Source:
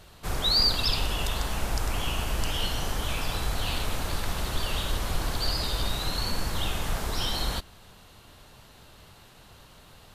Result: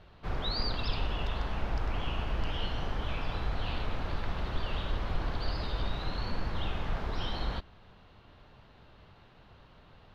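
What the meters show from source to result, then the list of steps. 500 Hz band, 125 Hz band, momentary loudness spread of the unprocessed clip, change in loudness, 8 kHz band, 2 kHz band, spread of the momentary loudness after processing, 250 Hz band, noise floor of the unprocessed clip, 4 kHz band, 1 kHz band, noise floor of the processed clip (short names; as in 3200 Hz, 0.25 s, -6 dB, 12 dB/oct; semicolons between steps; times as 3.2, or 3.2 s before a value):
-4.0 dB, -3.0 dB, 8 LU, -7.0 dB, -25.5 dB, -6.0 dB, 3 LU, -3.5 dB, -53 dBFS, -11.5 dB, -4.5 dB, -58 dBFS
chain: air absorption 290 m; gain -3 dB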